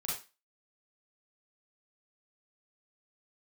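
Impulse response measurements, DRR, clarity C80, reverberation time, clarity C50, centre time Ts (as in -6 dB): -6.0 dB, 9.5 dB, 0.30 s, 2.0 dB, 45 ms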